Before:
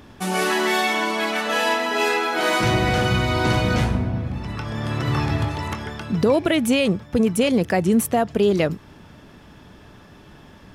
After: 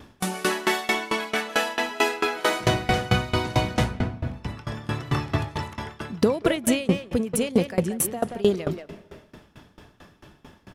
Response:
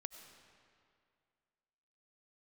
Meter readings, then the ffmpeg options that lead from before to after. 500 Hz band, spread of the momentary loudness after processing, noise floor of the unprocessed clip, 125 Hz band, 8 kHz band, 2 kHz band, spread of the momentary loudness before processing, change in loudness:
-4.0 dB, 10 LU, -47 dBFS, -4.5 dB, 0.0 dB, -4.5 dB, 8 LU, -4.0 dB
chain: -filter_complex "[0:a]highshelf=f=7100:g=4.5,asplit=2[s0][s1];[s1]adelay=180,highpass=300,lowpass=3400,asoftclip=type=hard:threshold=0.15,volume=0.501[s2];[s0][s2]amix=inputs=2:normalize=0,asplit=2[s3][s4];[1:a]atrim=start_sample=2205,afade=t=out:st=0.38:d=0.01,atrim=end_sample=17199,asetrate=22491,aresample=44100[s5];[s4][s5]afir=irnorm=-1:irlink=0,volume=0.282[s6];[s3][s6]amix=inputs=2:normalize=0,aeval=exprs='val(0)*pow(10,-22*if(lt(mod(4.5*n/s,1),2*abs(4.5)/1000),1-mod(4.5*n/s,1)/(2*abs(4.5)/1000),(mod(4.5*n/s,1)-2*abs(4.5)/1000)/(1-2*abs(4.5)/1000))/20)':c=same"

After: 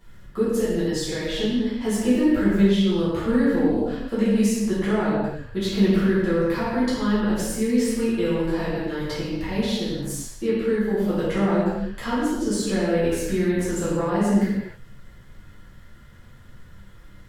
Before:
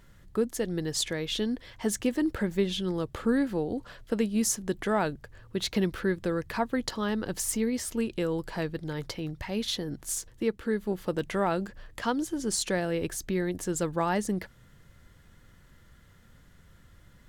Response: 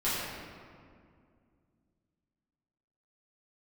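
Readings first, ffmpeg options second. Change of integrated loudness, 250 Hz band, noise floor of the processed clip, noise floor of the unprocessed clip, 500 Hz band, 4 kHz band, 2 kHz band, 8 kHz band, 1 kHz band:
+7.5 dB, +9.0 dB, -46 dBFS, -57 dBFS, +7.0 dB, +2.5 dB, +5.0 dB, -1.0 dB, +3.5 dB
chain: -filter_complex "[0:a]acrossover=split=500[s0][s1];[s1]acompressor=threshold=0.0224:ratio=6[s2];[s0][s2]amix=inputs=2:normalize=0[s3];[1:a]atrim=start_sample=2205,afade=t=out:st=0.37:d=0.01,atrim=end_sample=16758[s4];[s3][s4]afir=irnorm=-1:irlink=0,volume=0.794"

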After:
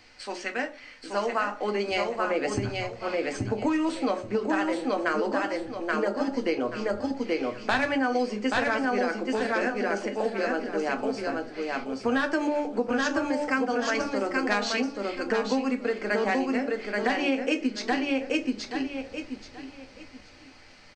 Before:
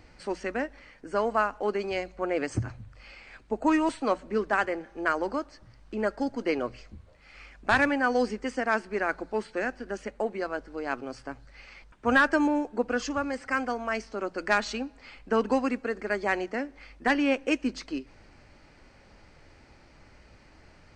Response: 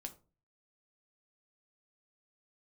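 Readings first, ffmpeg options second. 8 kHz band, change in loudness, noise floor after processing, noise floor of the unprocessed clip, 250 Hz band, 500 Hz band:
+4.0 dB, +1.0 dB, -50 dBFS, -56 dBFS, +2.5 dB, +2.5 dB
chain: -filter_complex "[0:a]acrossover=split=650|3300[s0][s1][s2];[s0]dynaudnorm=f=180:g=17:m=3.35[s3];[s3][s1][s2]amix=inputs=3:normalize=0,lowshelf=f=380:g=-10.5,aecho=1:1:829|1658|2487:0.631|0.158|0.0394,asplit=2[s4][s5];[s5]alimiter=limit=0.15:level=0:latency=1:release=449,volume=0.708[s6];[s4][s6]amix=inputs=2:normalize=0[s7];[1:a]atrim=start_sample=2205[s8];[s7][s8]afir=irnorm=-1:irlink=0,acompressor=threshold=0.0708:ratio=6,equalizer=f=4000:t=o:w=2.2:g=8.5"

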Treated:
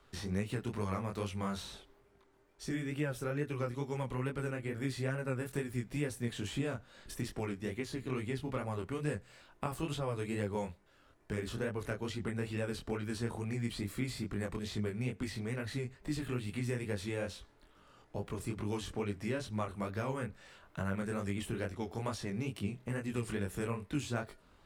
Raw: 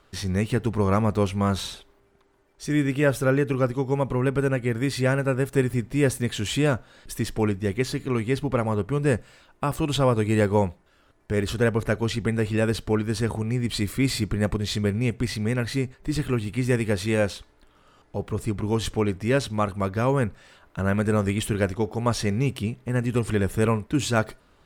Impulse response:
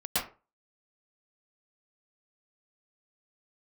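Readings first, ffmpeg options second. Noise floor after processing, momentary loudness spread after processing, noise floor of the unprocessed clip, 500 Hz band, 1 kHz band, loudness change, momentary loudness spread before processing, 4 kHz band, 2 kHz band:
-65 dBFS, 4 LU, -60 dBFS, -14.0 dB, -13.0 dB, -13.5 dB, 7 LU, -13.0 dB, -12.5 dB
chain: -filter_complex "[0:a]acrossover=split=130|1500[s0][s1][s2];[s0]acompressor=threshold=0.00891:ratio=4[s3];[s1]acompressor=threshold=0.0282:ratio=4[s4];[s2]acompressor=threshold=0.00891:ratio=4[s5];[s3][s4][s5]amix=inputs=3:normalize=0,flanger=delay=19.5:depth=6.1:speed=2.3,volume=0.794"

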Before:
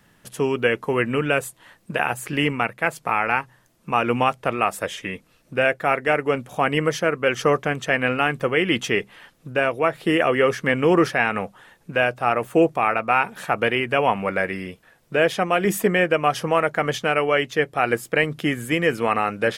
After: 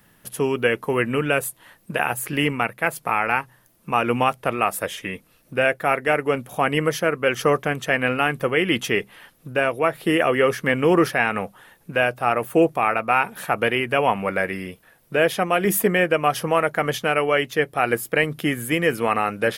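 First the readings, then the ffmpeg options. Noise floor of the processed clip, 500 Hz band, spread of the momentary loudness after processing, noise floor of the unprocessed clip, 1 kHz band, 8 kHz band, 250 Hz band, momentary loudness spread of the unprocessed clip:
-58 dBFS, 0.0 dB, 7 LU, -59 dBFS, 0.0 dB, +3.5 dB, 0.0 dB, 7 LU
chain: -af "aexciter=amount=3:drive=5.4:freq=9800"

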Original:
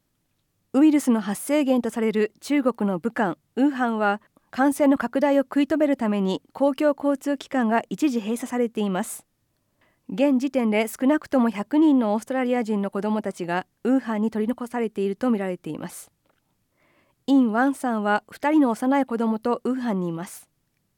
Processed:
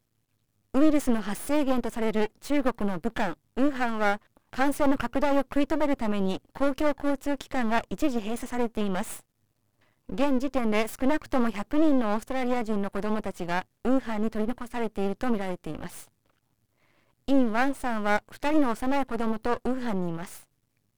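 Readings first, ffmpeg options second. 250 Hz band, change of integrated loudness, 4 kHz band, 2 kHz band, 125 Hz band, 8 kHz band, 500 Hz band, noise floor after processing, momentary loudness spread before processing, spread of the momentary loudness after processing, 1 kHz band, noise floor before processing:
-5.5 dB, -5.0 dB, -2.0 dB, -2.5 dB, -4.0 dB, -5.0 dB, -4.5 dB, -74 dBFS, 8 LU, 8 LU, -3.0 dB, -72 dBFS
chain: -af "equalizer=f=110:w=4:g=10,aeval=exprs='max(val(0),0)':c=same"

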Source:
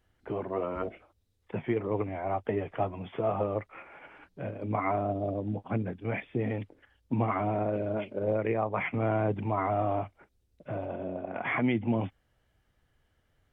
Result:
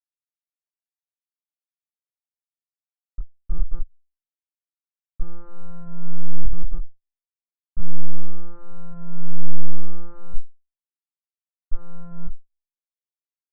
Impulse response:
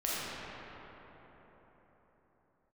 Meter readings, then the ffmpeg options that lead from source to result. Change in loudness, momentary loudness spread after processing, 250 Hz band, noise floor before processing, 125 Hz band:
-7.5 dB, 11 LU, -9.0 dB, -73 dBFS, 0.0 dB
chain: -filter_complex "[0:a]acrusher=bits=8:dc=4:mix=0:aa=0.000001,aeval=exprs='abs(val(0))':c=same,lowshelf=f=330:g=4,aecho=1:1:1.8:0.39,afwtdn=0.0178,alimiter=limit=0.0891:level=0:latency=1:release=82,acompressor=threshold=0.0141:ratio=10,aecho=1:1:218|436|654:0.133|0.044|0.0145,asplit=2[s0][s1];[1:a]atrim=start_sample=2205,adelay=54[s2];[s1][s2]afir=irnorm=-1:irlink=0,volume=0.282[s3];[s0][s3]amix=inputs=2:normalize=0,afftfilt=real='re*gte(hypot(re,im),3.16)':imag='im*gte(hypot(re,im),3.16)':win_size=1024:overlap=0.75,lowpass=f=1300:t=q:w=11,asplit=2[s4][s5];[s5]adelay=2.6,afreqshift=-0.64[s6];[s4][s6]amix=inputs=2:normalize=1,volume=4.47"

